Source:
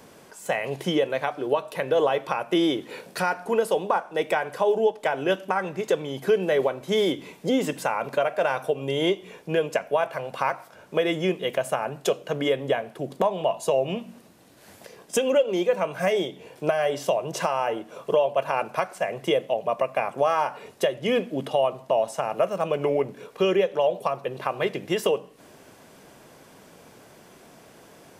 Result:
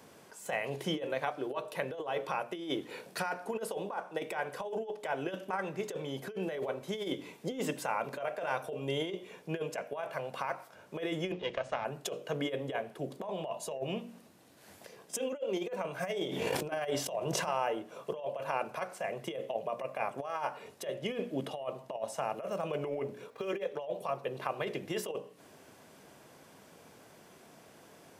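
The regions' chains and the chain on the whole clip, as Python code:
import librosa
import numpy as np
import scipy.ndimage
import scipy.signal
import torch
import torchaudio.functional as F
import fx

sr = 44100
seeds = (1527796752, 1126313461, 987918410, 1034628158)

y = fx.chain(x, sr, fx.halfwave_gain(db=-7.0),
    fx.lowpass(hz=5700.0, slope=24), at=(11.32, 11.85))
y = fx.chain(y, sr, fx.transient(attack_db=0, sustain_db=-7),
    fx.pre_swell(db_per_s=32.0), at=(16.21, 17.57))
y = fx.chain(y, sr, fx.median_filter(points=5),
    fx.notch(hz=2900.0, q=14.0),
    fx.notch_comb(f0_hz=180.0), at=(23.3, 23.76))
y = scipy.signal.sosfilt(scipy.signal.butter(2, 55.0, 'highpass', fs=sr, output='sos'), y)
y = fx.hum_notches(y, sr, base_hz=60, count=10)
y = fx.over_compress(y, sr, threshold_db=-25.0, ratio=-0.5)
y = y * 10.0 ** (-8.5 / 20.0)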